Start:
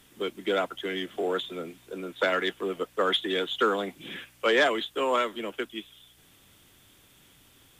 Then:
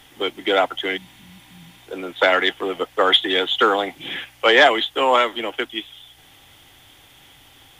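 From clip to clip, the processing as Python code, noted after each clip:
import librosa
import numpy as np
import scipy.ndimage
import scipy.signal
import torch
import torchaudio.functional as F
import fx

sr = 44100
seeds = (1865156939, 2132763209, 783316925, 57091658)

y = fx.spec_repair(x, sr, seeds[0], start_s=0.99, length_s=0.76, low_hz=220.0, high_hz=9600.0, source='after')
y = fx.graphic_eq_31(y, sr, hz=(200, 400, 800, 2000, 3150, 8000, 12500), db=(-11, -3, 10, 5, 5, -5, -4))
y = y * librosa.db_to_amplitude(7.5)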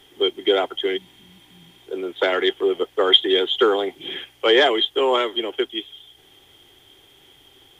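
y = fx.small_body(x, sr, hz=(390.0, 3200.0), ring_ms=40, db=15)
y = y * librosa.db_to_amplitude(-6.5)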